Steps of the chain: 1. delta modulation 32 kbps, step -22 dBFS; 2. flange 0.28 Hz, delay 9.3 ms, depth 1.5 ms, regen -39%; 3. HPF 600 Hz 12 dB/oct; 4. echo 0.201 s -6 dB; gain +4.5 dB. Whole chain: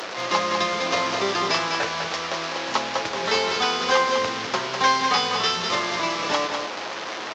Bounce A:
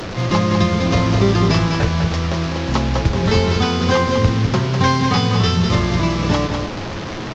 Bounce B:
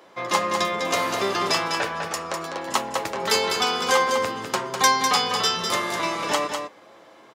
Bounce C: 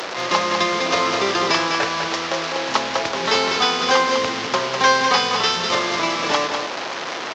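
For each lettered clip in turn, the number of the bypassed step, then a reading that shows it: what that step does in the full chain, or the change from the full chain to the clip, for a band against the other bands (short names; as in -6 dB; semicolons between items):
3, 125 Hz band +25.5 dB; 1, 8 kHz band +4.5 dB; 2, loudness change +4.0 LU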